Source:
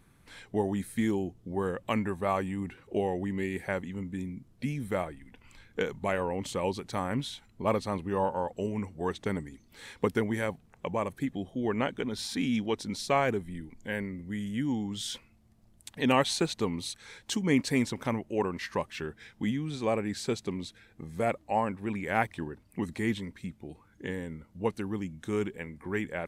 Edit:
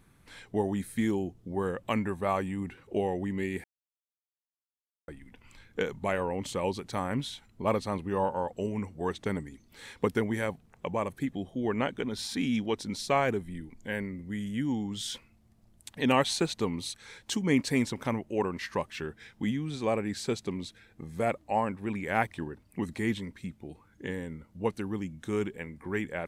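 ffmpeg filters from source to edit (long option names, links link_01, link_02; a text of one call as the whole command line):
ffmpeg -i in.wav -filter_complex "[0:a]asplit=3[link_01][link_02][link_03];[link_01]atrim=end=3.64,asetpts=PTS-STARTPTS,afade=type=out:start_time=3.636:duration=0.004:curve=hsin[link_04];[link_02]atrim=start=3.64:end=5.08,asetpts=PTS-STARTPTS,volume=0[link_05];[link_03]atrim=start=5.08,asetpts=PTS-STARTPTS,afade=type=in:duration=0.004:curve=hsin[link_06];[link_04][link_05][link_06]concat=n=3:v=0:a=1" out.wav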